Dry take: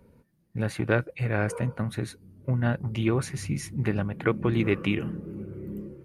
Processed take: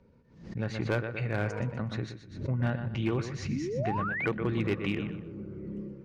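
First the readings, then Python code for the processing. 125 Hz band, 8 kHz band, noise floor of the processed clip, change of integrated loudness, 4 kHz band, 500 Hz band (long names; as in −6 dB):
−4.0 dB, −10.0 dB, −60 dBFS, −4.0 dB, −3.0 dB, −4.0 dB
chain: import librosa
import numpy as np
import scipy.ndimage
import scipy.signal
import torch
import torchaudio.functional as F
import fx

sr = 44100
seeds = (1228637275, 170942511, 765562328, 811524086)

p1 = scipy.signal.sosfilt(scipy.signal.butter(6, 6300.0, 'lowpass', fs=sr, output='sos'), x)
p2 = p1 + fx.echo_feedback(p1, sr, ms=123, feedback_pct=27, wet_db=-9.5, dry=0)
p3 = fx.rider(p2, sr, range_db=4, speed_s=2.0)
p4 = np.clip(10.0 ** (15.5 / 20.0) * p3, -1.0, 1.0) / 10.0 ** (15.5 / 20.0)
p5 = fx.spec_paint(p4, sr, seeds[0], shape='rise', start_s=3.48, length_s=0.78, low_hz=200.0, high_hz=2500.0, level_db=-28.0)
p6 = fx.pre_swell(p5, sr, db_per_s=98.0)
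y = p6 * librosa.db_to_amplitude(-5.5)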